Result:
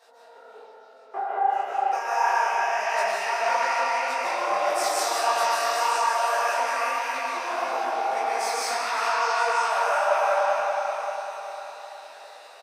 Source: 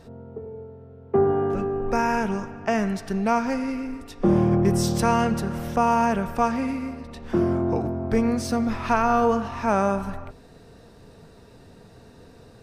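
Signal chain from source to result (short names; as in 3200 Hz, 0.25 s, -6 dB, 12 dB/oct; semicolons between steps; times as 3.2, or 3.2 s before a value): regenerating reverse delay 0.193 s, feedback 74%, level -7.5 dB; HPF 680 Hz 24 dB/oct; 7.46–8.03 transient shaper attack +5 dB, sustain -1 dB; limiter -21 dBFS, peak gain reduction 10.5 dB; doubler 19 ms -2 dB; delay with a stepping band-pass 0.322 s, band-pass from 2600 Hz, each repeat 0.7 oct, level -1.5 dB; reverb RT60 1.7 s, pre-delay 0.105 s, DRR -5.5 dB; detuned doubles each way 58 cents; gain +2 dB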